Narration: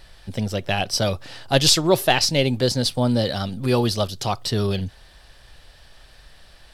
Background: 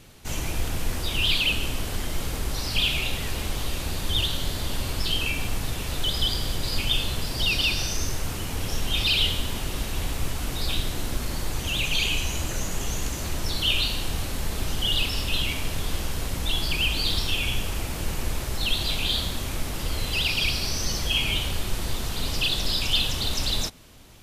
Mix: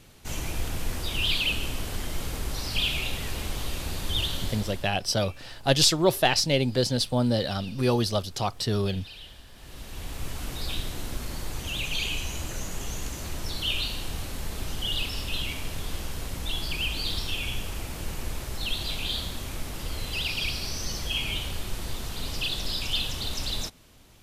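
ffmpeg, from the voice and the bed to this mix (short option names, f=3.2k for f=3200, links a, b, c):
-filter_complex "[0:a]adelay=4150,volume=-4dB[a];[1:a]volume=15dB,afade=t=out:st=4.41:d=0.51:silence=0.1,afade=t=in:st=9.54:d=0.84:silence=0.125893[b];[a][b]amix=inputs=2:normalize=0"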